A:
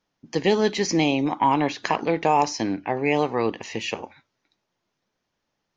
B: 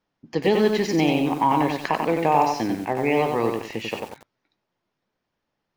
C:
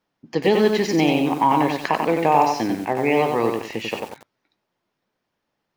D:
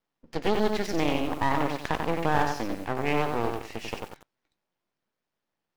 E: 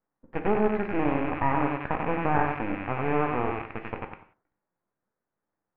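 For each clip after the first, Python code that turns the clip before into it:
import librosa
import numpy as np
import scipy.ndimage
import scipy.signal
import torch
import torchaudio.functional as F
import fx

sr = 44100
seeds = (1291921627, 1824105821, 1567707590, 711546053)

y1 = fx.high_shelf(x, sr, hz=4600.0, db=-10.0)
y1 = fx.notch(y1, sr, hz=6100.0, q=18.0)
y1 = fx.echo_crushed(y1, sr, ms=93, feedback_pct=35, bits=7, wet_db=-4)
y2 = fx.low_shelf(y1, sr, hz=78.0, db=-8.5)
y2 = y2 * librosa.db_to_amplitude(2.5)
y3 = np.maximum(y2, 0.0)
y3 = y3 * librosa.db_to_amplitude(-4.5)
y4 = fx.rattle_buzz(y3, sr, strikes_db=-44.0, level_db=-17.0)
y4 = scipy.signal.sosfilt(scipy.signal.butter(4, 1700.0, 'lowpass', fs=sr, output='sos'), y4)
y4 = fx.rev_gated(y4, sr, seeds[0], gate_ms=210, shape='falling', drr_db=6.5)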